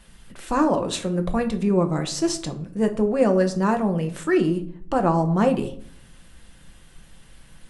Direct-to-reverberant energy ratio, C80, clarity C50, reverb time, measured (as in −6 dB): 5.5 dB, 17.5 dB, 13.5 dB, 0.60 s